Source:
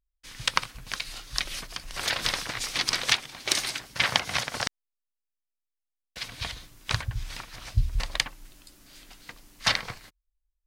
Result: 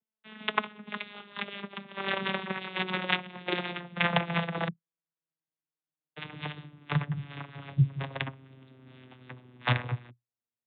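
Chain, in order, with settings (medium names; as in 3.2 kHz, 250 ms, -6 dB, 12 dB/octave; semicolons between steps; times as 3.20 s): vocoder on a note that slides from A3, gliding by -11 st; steep low-pass 3.7 kHz 96 dB/octave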